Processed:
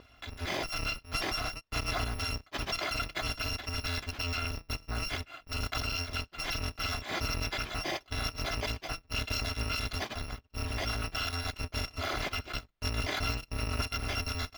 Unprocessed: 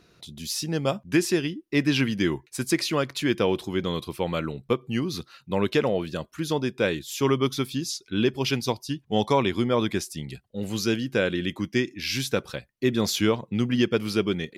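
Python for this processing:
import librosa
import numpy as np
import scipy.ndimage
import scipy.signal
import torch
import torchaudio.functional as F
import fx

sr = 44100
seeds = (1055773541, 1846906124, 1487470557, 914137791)

p1 = fx.bit_reversed(x, sr, seeds[0], block=256)
p2 = fx.air_absorb(p1, sr, metres=270.0)
p3 = fx.over_compress(p2, sr, threshold_db=-42.0, ratio=-0.5)
p4 = p2 + F.gain(torch.from_numpy(p3), -0.5).numpy()
y = F.gain(torch.from_numpy(p4), 1.5).numpy()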